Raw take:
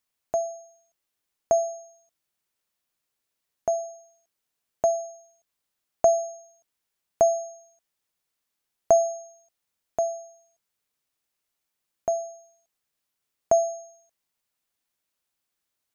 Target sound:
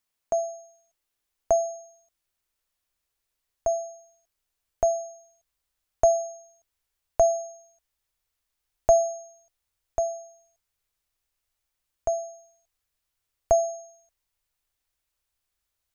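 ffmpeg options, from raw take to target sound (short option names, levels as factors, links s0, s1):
-af "asubboost=boost=10.5:cutoff=60,atempo=1"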